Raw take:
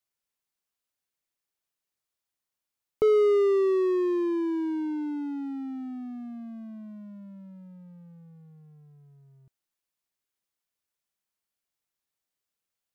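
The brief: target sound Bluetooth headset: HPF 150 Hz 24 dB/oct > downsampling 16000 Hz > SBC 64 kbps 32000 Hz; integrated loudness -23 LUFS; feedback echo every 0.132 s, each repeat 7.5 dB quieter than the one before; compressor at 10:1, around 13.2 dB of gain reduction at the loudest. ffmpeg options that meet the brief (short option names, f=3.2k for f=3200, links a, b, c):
-af "acompressor=threshold=-32dB:ratio=10,highpass=f=150:w=0.5412,highpass=f=150:w=1.3066,aecho=1:1:132|264|396|528|660:0.422|0.177|0.0744|0.0312|0.0131,aresample=16000,aresample=44100,volume=13dB" -ar 32000 -c:a sbc -b:a 64k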